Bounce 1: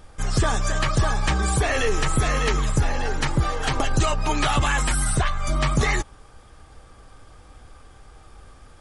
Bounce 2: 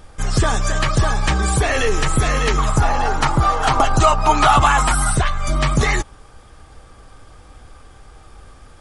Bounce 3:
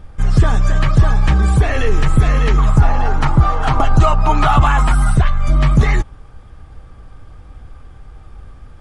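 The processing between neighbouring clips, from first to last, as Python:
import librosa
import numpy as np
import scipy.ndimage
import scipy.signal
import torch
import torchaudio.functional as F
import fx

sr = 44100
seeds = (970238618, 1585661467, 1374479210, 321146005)

y1 = fx.spec_box(x, sr, start_s=2.58, length_s=2.54, low_hz=620.0, high_hz=1500.0, gain_db=8)
y1 = y1 * librosa.db_to_amplitude(4.0)
y2 = fx.bass_treble(y1, sr, bass_db=9, treble_db=-9)
y2 = y2 * librosa.db_to_amplitude(-2.0)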